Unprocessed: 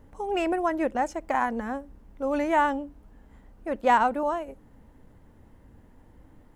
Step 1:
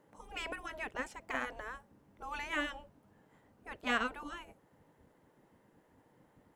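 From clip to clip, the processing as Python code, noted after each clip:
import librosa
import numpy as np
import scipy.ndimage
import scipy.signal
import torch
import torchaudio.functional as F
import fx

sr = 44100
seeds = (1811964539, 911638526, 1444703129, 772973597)

y = fx.dynamic_eq(x, sr, hz=3100.0, q=1.3, threshold_db=-46.0, ratio=4.0, max_db=7)
y = fx.spec_gate(y, sr, threshold_db=-10, keep='weak')
y = F.gain(torch.from_numpy(y), -5.5).numpy()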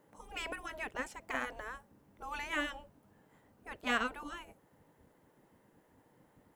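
y = fx.high_shelf(x, sr, hz=10000.0, db=7.5)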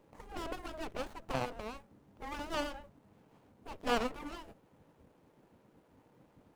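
y = fx.running_max(x, sr, window=17)
y = F.gain(torch.from_numpy(y), 2.5).numpy()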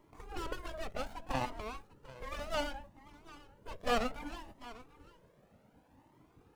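y = x + 10.0 ** (-17.5 / 20.0) * np.pad(x, (int(744 * sr / 1000.0), 0))[:len(x)]
y = fx.comb_cascade(y, sr, direction='rising', hz=0.65)
y = F.gain(torch.from_numpy(y), 5.0).numpy()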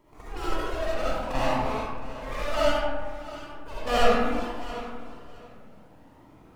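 y = fx.echo_feedback(x, sr, ms=672, feedback_pct=23, wet_db=-17.5)
y = fx.rev_freeverb(y, sr, rt60_s=1.5, hf_ratio=0.45, predelay_ms=25, drr_db=-8.5)
y = F.gain(torch.from_numpy(y), 2.0).numpy()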